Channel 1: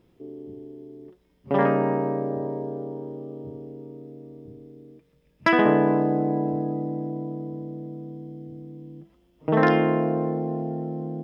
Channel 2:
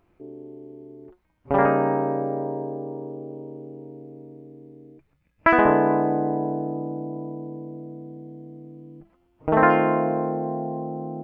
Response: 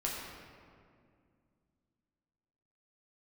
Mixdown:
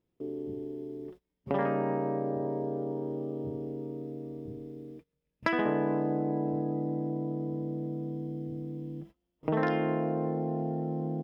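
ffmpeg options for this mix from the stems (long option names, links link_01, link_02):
-filter_complex "[0:a]volume=2.5dB[link_01];[1:a]lowpass=frequency=1000:width=0.5412,lowpass=frequency=1000:width=1.3066,adelay=16,volume=-14dB[link_02];[link_01][link_02]amix=inputs=2:normalize=0,agate=range=-22dB:threshold=-48dB:ratio=16:detection=peak,acompressor=threshold=-31dB:ratio=2.5"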